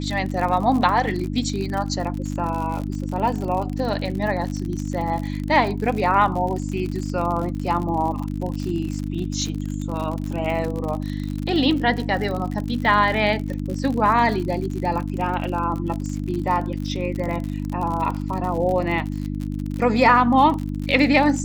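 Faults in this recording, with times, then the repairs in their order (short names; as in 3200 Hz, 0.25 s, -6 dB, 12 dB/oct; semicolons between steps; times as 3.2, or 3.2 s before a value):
crackle 58/s -27 dBFS
hum 50 Hz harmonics 6 -27 dBFS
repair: de-click; de-hum 50 Hz, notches 6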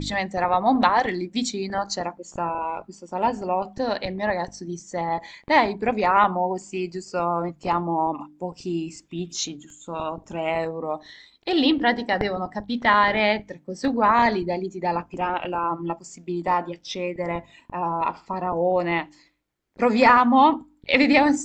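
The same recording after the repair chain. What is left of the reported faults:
none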